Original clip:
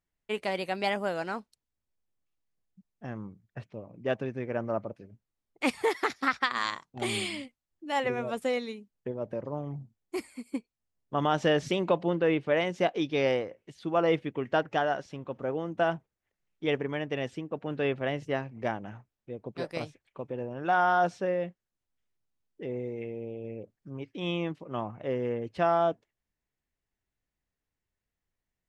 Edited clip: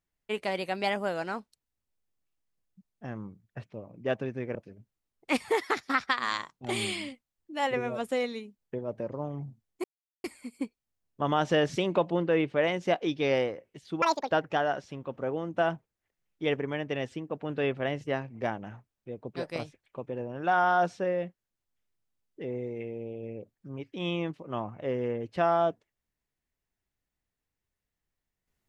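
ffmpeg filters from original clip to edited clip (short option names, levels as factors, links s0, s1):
-filter_complex "[0:a]asplit=5[s0][s1][s2][s3][s4];[s0]atrim=end=4.552[s5];[s1]atrim=start=4.878:end=10.17,asetpts=PTS-STARTPTS,afade=t=out:st=5.288:d=0.004:c=hsin,apad=pad_dur=0.4[s6];[s2]atrim=start=10.17:end=13.954,asetpts=PTS-STARTPTS,afade=t=in:d=0.004:c=hsin[s7];[s3]atrim=start=13.95:end=14.52,asetpts=PTS-STARTPTS,asetrate=87318,aresample=44100,atrim=end_sample=12695,asetpts=PTS-STARTPTS[s8];[s4]atrim=start=14.516[s9];[s6][s7]concat=n=2:v=0:a=1[s10];[s5][s10]acrossfade=d=0.004:c1=hsin:c2=hsin[s11];[s11][s8]acrossfade=d=0.004:c1=hsin:c2=hsin[s12];[s12][s9]acrossfade=d=0.004:c1=hsin:c2=hsin"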